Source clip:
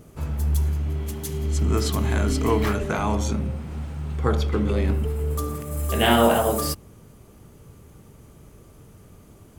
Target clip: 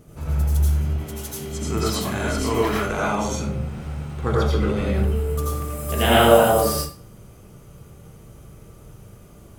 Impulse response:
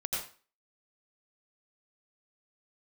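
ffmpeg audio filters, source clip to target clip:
-filter_complex "[0:a]asettb=1/sr,asplit=3[a][b][c];[a]atrim=end=0.904[d];[b]atrim=start=0.9:end=3.47,asetpts=PTS-STARTPTS,afade=t=in:d=0.004:c=qsin,afade=t=out:st=2.566:d=0.004:c=qsin,lowshelf=f=110:g=-10.5[e];[c]atrim=start=3.466[f];[d][e]acrossfade=d=0.004:c1=hsin:c2=qsin[g];[g][f]acrossfade=d=0.004:c1=qsin:c2=hsin[h];[1:a]atrim=start_sample=2205[i];[h][i]afir=irnorm=-1:irlink=0,volume=-1dB"

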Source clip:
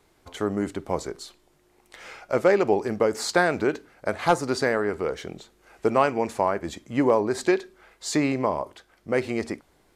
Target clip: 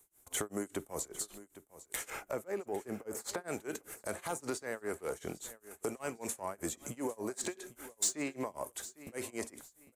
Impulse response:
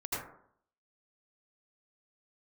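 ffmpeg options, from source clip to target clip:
-filter_complex "[0:a]asetnsamples=n=441:p=0,asendcmd='2.1 equalizer g -9.5;3.48 equalizer g 5.5',equalizer=f=8.7k:w=0.37:g=2.5,agate=range=-19dB:threshold=-49dB:ratio=16:detection=peak,acrossover=split=260|5100[a][b][c];[a]acompressor=threshold=-39dB:ratio=4[d];[b]acompressor=threshold=-23dB:ratio=4[e];[c]acompressor=threshold=-54dB:ratio=4[f];[d][e][f]amix=inputs=3:normalize=0,alimiter=limit=-20dB:level=0:latency=1:release=25,acompressor=threshold=-42dB:ratio=3,aexciter=amount=7.9:drive=7.4:freq=6.8k,asoftclip=type=tanh:threshold=-28.5dB,tremolo=f=5.1:d=0.97,aecho=1:1:803|1606:0.158|0.0396,volume=6.5dB"

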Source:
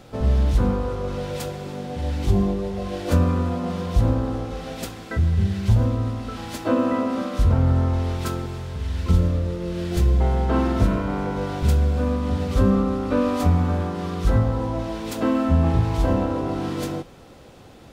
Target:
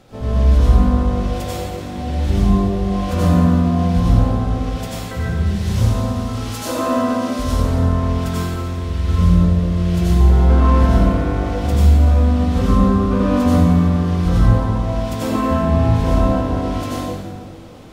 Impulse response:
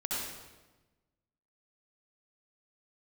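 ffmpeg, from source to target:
-filter_complex "[0:a]asettb=1/sr,asplit=3[a][b][c];[a]atrim=end=5.464[d];[b]atrim=start=5.46:end=7.71,asetpts=PTS-STARTPTS,afade=t=in:d=0.004:c=qsin,afade=t=out:st=2.246:d=0.004:c=qsin,bass=f=250:g=-5,treble=f=4k:g=8[e];[c]atrim=start=7.706[f];[d][e]acrossfade=d=0.004:c1=hsin:c2=qsin[g];[g][f]acrossfade=d=0.004:c1=qsin:c2=hsin[h];[1:a]atrim=start_sample=2205,asetrate=33516,aresample=44100[i];[h][i]afir=irnorm=-1:irlink=0,volume=-2dB"

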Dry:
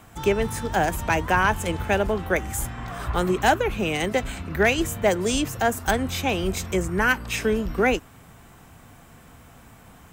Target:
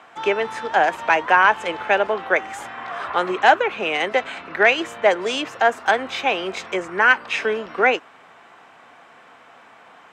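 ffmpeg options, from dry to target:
-af "highpass=560,lowpass=3.1k,volume=7dB"

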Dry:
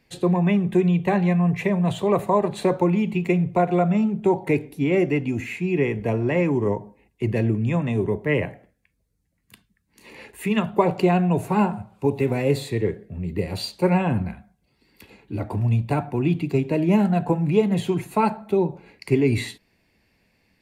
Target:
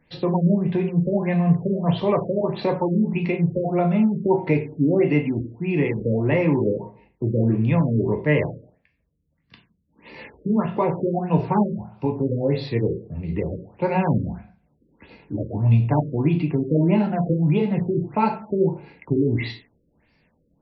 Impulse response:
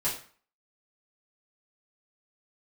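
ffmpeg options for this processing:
-filter_complex "[0:a]alimiter=limit=-12dB:level=0:latency=1:release=252,asplit=2[a][b];[1:a]atrim=start_sample=2205,lowpass=8k[c];[b][c]afir=irnorm=-1:irlink=0,volume=-8dB[d];[a][d]amix=inputs=2:normalize=0,afftfilt=real='re*lt(b*sr/1024,560*pow(5900/560,0.5+0.5*sin(2*PI*1.6*pts/sr)))':imag='im*lt(b*sr/1024,560*pow(5900/560,0.5+0.5*sin(2*PI*1.6*pts/sr)))':win_size=1024:overlap=0.75,volume=-1.5dB"

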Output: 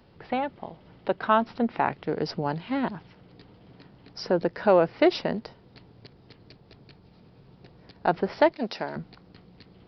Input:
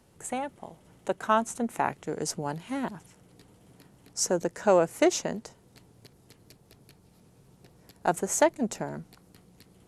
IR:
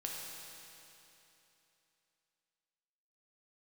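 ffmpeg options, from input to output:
-filter_complex "[0:a]asettb=1/sr,asplit=3[a][b][c];[a]atrim=end=8.524[d];[b]atrim=start=8.52:end=8.96,asetpts=PTS-STARTPTS,afade=t=in:d=0.004:c=qsin,afade=t=out:st=0.436:d=0.004:c=qsin,aemphasis=mode=production:type=riaa[e];[c]atrim=start=8.956[f];[d][e]acrossfade=d=0.004:c1=hsin:c2=qsin[g];[g][f]acrossfade=d=0.004:c1=qsin:c2=hsin,asplit=2[h][i];[i]alimiter=limit=-19.5dB:level=0:latency=1,volume=-3dB[j];[h][j]amix=inputs=2:normalize=0,aresample=11025,aresample=44100"

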